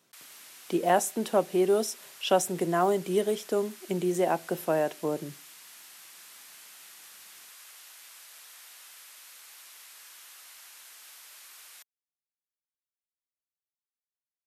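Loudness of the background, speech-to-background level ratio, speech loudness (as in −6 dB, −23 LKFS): −47.5 LKFS, 19.5 dB, −28.0 LKFS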